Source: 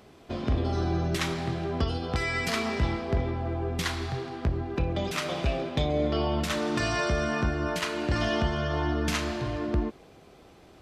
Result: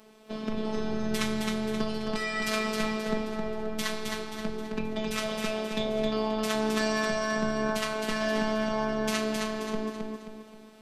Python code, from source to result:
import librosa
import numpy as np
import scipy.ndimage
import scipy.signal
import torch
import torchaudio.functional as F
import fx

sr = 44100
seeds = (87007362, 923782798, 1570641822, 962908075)

y = scipy.signal.sosfilt(scipy.signal.butter(4, 73.0, 'highpass', fs=sr, output='sos'), x)
y = fx.high_shelf(y, sr, hz=7700.0, db=5.0)
y = fx.echo_feedback(y, sr, ms=265, feedback_pct=41, wet_db=-4)
y = fx.robotise(y, sr, hz=217.0)